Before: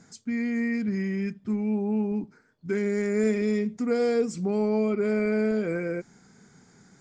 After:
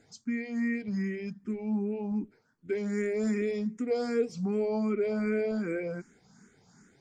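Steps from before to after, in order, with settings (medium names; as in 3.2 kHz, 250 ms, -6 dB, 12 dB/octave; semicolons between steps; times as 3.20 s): barber-pole phaser +2.6 Hz; trim -1.5 dB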